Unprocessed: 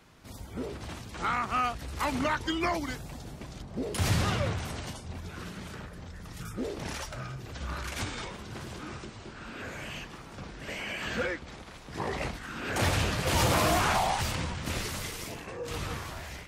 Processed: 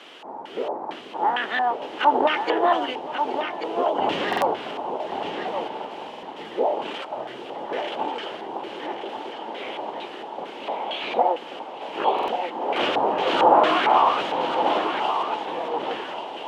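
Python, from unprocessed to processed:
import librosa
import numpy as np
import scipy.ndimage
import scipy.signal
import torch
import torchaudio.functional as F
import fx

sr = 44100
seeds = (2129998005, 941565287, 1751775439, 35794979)

p1 = fx.formant_shift(x, sr, semitones=6)
p2 = fx.quant_dither(p1, sr, seeds[0], bits=6, dither='triangular')
p3 = p1 + (p2 * 10.0 ** (-3.5 / 20.0))
p4 = fx.curve_eq(p3, sr, hz=(1300.0, 2800.0, 12000.0), db=(0, -4, 10))
p5 = p4 + 10.0 ** (-18.5 / 20.0) * np.pad(p4, (int(822 * sr / 1000.0), 0))[:len(p4)]
p6 = fx.filter_lfo_lowpass(p5, sr, shape='square', hz=2.2, low_hz=870.0, high_hz=3000.0, q=6.1)
p7 = scipy.signal.sosfilt(scipy.signal.butter(4, 340.0, 'highpass', fs=sr, output='sos'), p6)
p8 = fx.tilt_eq(p7, sr, slope=-4.0)
p9 = p8 + fx.echo_single(p8, sr, ms=1136, db=-7.0, dry=0)
y = fx.buffer_glitch(p9, sr, at_s=(4.28, 6.09, 12.14), block=2048, repeats=2)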